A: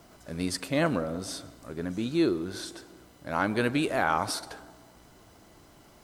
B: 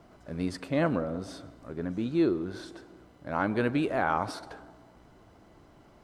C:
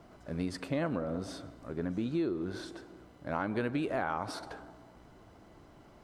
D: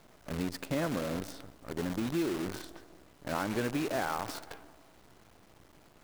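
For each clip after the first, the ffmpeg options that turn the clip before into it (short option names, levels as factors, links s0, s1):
-af "lowpass=f=1600:p=1"
-af "acompressor=threshold=0.0355:ratio=5"
-af "acrusher=bits=7:dc=4:mix=0:aa=0.000001"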